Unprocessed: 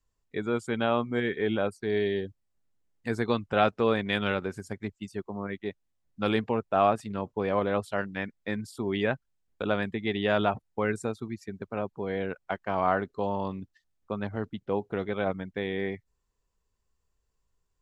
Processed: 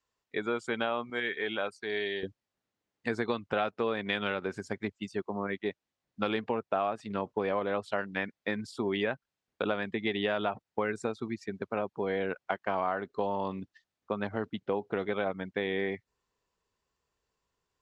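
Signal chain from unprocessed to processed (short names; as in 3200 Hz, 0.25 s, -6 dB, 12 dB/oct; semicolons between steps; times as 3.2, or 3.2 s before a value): HPF 550 Hz 6 dB/oct, from 1.1 s 1400 Hz, from 2.23 s 280 Hz; compressor 6:1, threshold -31 dBFS, peak gain reduction 12.5 dB; LPF 5500 Hz 12 dB/oct; gain +4.5 dB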